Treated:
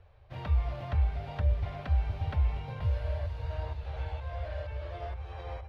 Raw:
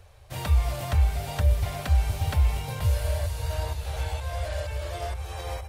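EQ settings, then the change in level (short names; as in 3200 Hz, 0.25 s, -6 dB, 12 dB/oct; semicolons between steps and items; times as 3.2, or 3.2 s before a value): air absorption 310 m; -5.5 dB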